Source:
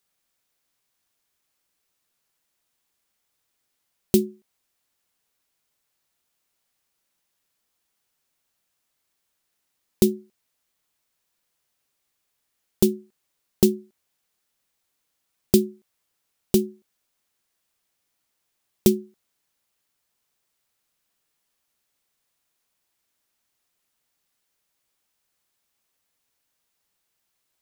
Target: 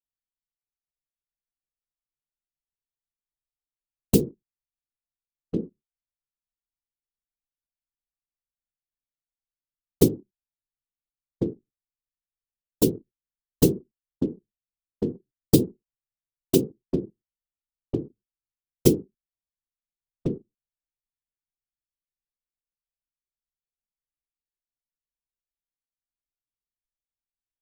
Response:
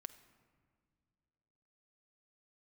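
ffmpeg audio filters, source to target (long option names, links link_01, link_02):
-filter_complex "[0:a]asplit=2[link_01][link_02];[link_02]adelay=1399,volume=-7dB,highshelf=frequency=4000:gain=-31.5[link_03];[link_01][link_03]amix=inputs=2:normalize=0,afftfilt=real='hypot(re,im)*cos(2*PI*random(0))':imag='hypot(re,im)*sin(2*PI*random(1))':win_size=512:overlap=0.75,anlmdn=0.0398,volume=5.5dB"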